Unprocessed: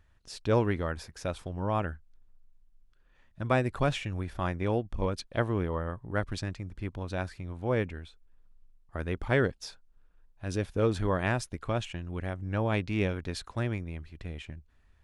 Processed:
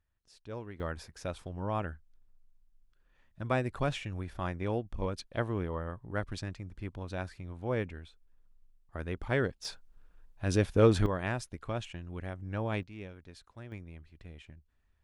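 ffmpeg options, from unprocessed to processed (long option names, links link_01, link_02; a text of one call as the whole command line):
ffmpeg -i in.wav -af "asetnsamples=nb_out_samples=441:pad=0,asendcmd='0.8 volume volume -4dB;9.65 volume volume 4dB;11.06 volume volume -5dB;12.83 volume volume -16dB;13.72 volume volume -9.5dB',volume=-16.5dB" out.wav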